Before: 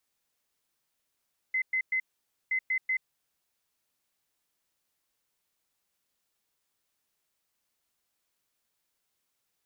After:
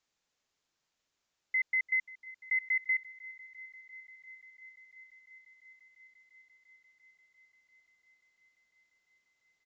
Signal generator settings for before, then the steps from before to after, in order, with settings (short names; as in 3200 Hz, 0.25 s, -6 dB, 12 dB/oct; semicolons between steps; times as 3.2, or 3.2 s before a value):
beep pattern sine 2050 Hz, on 0.08 s, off 0.11 s, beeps 3, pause 0.51 s, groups 2, -25 dBFS
thin delay 0.345 s, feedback 84%, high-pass 2000 Hz, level -17 dB; downsampling 16000 Hz